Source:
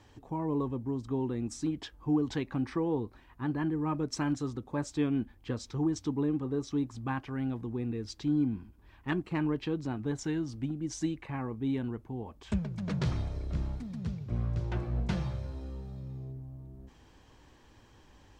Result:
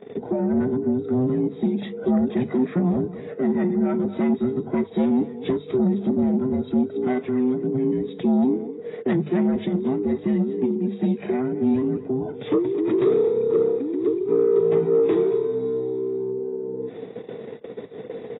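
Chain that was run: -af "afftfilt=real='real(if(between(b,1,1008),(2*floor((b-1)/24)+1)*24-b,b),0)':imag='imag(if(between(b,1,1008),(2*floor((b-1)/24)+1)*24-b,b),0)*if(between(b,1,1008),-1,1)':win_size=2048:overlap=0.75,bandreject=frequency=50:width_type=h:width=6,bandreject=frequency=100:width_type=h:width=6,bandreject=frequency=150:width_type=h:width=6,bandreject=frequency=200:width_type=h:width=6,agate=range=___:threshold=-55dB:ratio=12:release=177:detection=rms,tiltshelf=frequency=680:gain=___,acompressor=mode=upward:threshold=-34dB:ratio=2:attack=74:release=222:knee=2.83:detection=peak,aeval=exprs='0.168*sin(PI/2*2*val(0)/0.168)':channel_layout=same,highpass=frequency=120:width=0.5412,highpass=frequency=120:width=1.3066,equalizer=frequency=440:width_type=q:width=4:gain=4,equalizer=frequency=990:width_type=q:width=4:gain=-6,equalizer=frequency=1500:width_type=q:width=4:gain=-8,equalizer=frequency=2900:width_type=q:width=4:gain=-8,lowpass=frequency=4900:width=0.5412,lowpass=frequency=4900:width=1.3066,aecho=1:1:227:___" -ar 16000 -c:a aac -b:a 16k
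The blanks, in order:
-47dB, 4, 0.15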